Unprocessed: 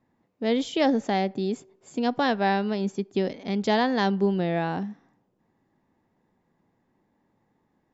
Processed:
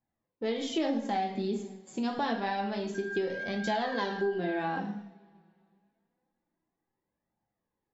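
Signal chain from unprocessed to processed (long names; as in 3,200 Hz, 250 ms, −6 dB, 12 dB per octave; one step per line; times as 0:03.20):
noise gate −54 dBFS, range −13 dB
coupled-rooms reverb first 0.54 s, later 2.4 s, from −25 dB, DRR 1 dB
0:02.94–0:04.78: steady tone 1,600 Hz −33 dBFS
flanger 0.27 Hz, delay 1.2 ms, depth 4.3 ms, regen +30%
downward compressor 3 to 1, threshold −29 dBFS, peak gain reduction 9 dB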